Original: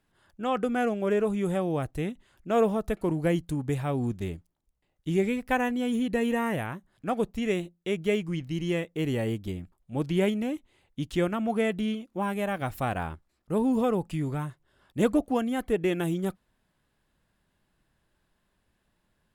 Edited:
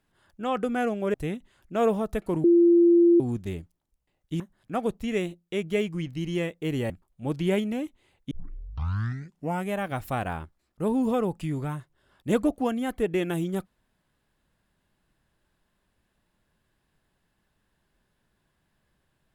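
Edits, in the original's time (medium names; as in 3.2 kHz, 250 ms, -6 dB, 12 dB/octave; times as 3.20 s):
1.14–1.89 s: delete
3.19–3.95 s: bleep 343 Hz -14 dBFS
5.15–6.74 s: delete
9.24–9.60 s: delete
11.01 s: tape start 1.40 s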